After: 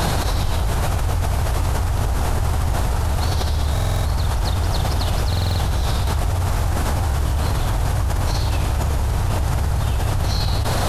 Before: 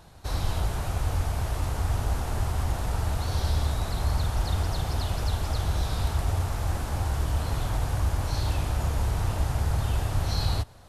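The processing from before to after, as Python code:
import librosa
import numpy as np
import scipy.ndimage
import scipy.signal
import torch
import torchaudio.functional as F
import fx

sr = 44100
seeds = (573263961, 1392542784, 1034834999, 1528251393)

y = fx.buffer_glitch(x, sr, at_s=(3.73, 5.28), block=2048, repeats=6)
y = fx.env_flatten(y, sr, amount_pct=100)
y = y * 10.0 ** (2.0 / 20.0)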